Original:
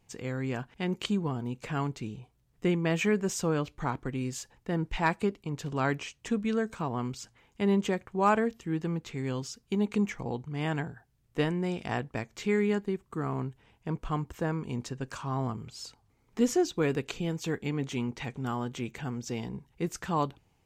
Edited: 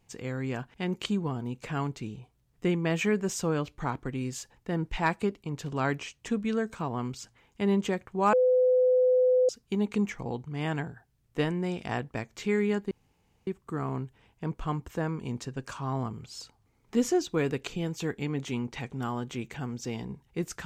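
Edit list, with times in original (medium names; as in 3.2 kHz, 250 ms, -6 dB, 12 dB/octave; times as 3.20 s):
8.33–9.49 s: bleep 506 Hz -19 dBFS
12.91 s: insert room tone 0.56 s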